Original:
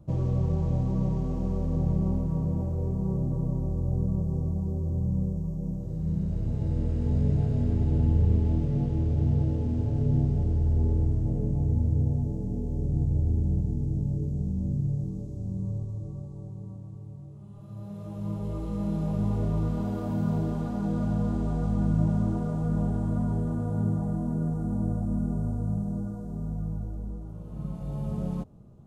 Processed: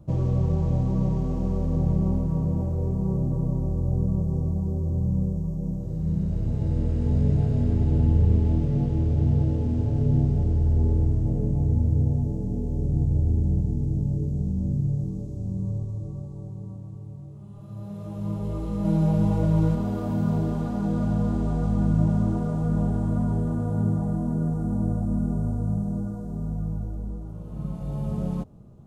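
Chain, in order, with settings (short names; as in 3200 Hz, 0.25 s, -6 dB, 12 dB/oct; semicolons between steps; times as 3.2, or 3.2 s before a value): 18.84–19.75 comb 6.3 ms, depth 95%; gain +3 dB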